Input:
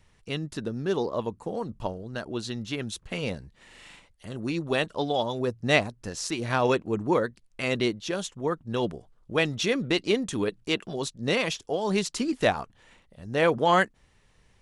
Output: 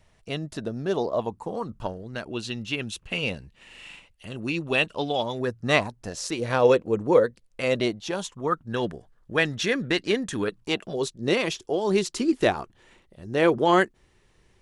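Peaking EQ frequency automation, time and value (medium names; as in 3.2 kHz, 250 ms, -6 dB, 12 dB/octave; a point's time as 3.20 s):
peaking EQ +10.5 dB 0.34 oct
1.14 s 650 Hz
2.33 s 2.7 kHz
5.14 s 2.7 kHz
6.29 s 500 Hz
7.61 s 500 Hz
8.79 s 1.7 kHz
10.38 s 1.7 kHz
11.09 s 360 Hz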